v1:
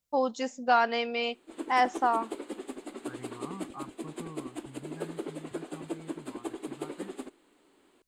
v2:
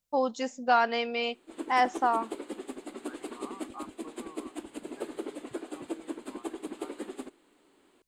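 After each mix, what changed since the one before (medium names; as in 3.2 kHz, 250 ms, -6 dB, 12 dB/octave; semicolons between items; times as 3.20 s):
second voice: add Butterworth band-pass 950 Hz, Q 0.64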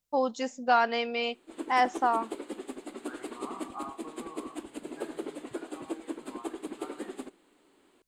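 reverb: on, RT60 0.65 s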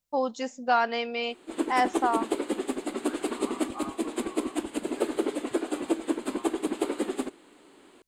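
background +9.5 dB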